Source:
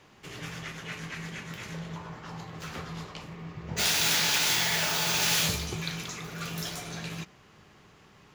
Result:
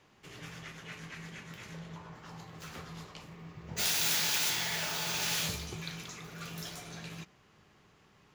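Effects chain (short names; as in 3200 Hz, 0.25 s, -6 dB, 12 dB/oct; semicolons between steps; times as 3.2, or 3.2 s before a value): 2.15–4.5 high shelf 7300 Hz +7 dB; gain -7 dB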